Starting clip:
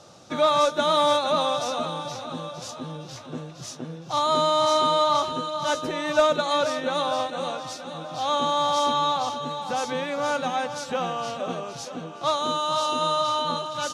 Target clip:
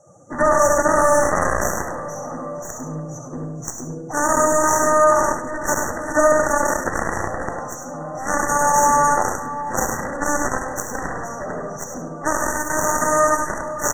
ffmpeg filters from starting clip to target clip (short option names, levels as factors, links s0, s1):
-filter_complex "[0:a]asplit=2[s0][s1];[s1]aecho=0:1:70|140|210|280|350|420|490:0.668|0.341|0.174|0.0887|0.0452|0.0231|0.0118[s2];[s0][s2]amix=inputs=2:normalize=0,afftdn=nr=16:nf=-41,highshelf=f=5200:t=q:w=3:g=13,aeval=exprs='0.473*(cos(1*acos(clip(val(0)/0.473,-1,1)))-cos(1*PI/2))+0.015*(cos(4*acos(clip(val(0)/0.473,-1,1)))-cos(4*PI/2))+0.0188*(cos(6*acos(clip(val(0)/0.473,-1,1)))-cos(6*PI/2))+0.0944*(cos(7*acos(clip(val(0)/0.473,-1,1)))-cos(7*PI/2))':c=same,asplit=2[s3][s4];[s4]aecho=0:1:101:0.335[s5];[s3][s5]amix=inputs=2:normalize=0,afftfilt=real='re*(1-between(b*sr/4096,2000,5600))':imag='im*(1-between(b*sr/4096,2000,5600))':win_size=4096:overlap=0.75,aemphasis=mode=reproduction:type=50kf,alimiter=level_in=7.08:limit=0.891:release=50:level=0:latency=1,volume=0.596"